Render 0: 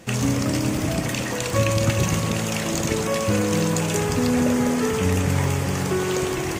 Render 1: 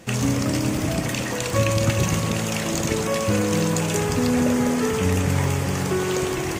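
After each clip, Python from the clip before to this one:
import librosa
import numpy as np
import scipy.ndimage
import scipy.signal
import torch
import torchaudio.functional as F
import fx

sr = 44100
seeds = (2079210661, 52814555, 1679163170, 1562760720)

y = x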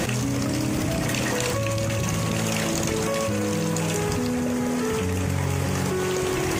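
y = fx.env_flatten(x, sr, amount_pct=100)
y = F.gain(torch.from_numpy(y), -8.0).numpy()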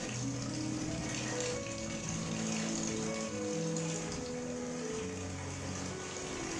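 y = fx.ladder_lowpass(x, sr, hz=7500.0, resonance_pct=50)
y = fx.low_shelf(y, sr, hz=150.0, db=-5.0)
y = fx.room_shoebox(y, sr, seeds[0], volume_m3=300.0, walls='furnished', distance_m=1.9)
y = F.gain(torch.from_numpy(y), -7.5).numpy()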